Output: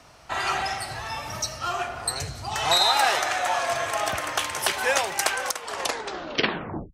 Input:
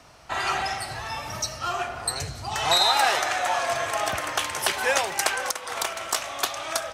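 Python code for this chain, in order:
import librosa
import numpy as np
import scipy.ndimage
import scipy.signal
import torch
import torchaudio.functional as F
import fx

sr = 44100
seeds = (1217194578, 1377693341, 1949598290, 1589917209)

y = fx.tape_stop_end(x, sr, length_s=1.4)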